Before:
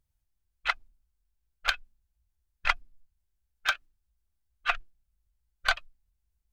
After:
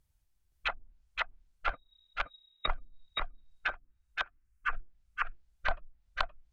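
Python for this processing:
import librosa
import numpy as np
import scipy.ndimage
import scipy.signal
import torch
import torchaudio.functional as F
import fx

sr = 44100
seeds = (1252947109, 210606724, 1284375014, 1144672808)

p1 = fx.freq_invert(x, sr, carrier_hz=3800, at=(1.73, 2.68))
p2 = fx.fixed_phaser(p1, sr, hz=1600.0, stages=4, at=(3.7, 4.73))
p3 = p2 + fx.echo_feedback(p2, sr, ms=521, feedback_pct=22, wet_db=-5, dry=0)
p4 = fx.env_lowpass_down(p3, sr, base_hz=530.0, full_db=-28.0)
y = F.gain(torch.from_numpy(p4), 4.0).numpy()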